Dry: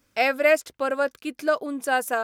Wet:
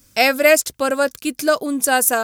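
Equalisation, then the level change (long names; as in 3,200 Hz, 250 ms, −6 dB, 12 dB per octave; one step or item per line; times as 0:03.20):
bass and treble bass +9 dB, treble +14 dB
+5.0 dB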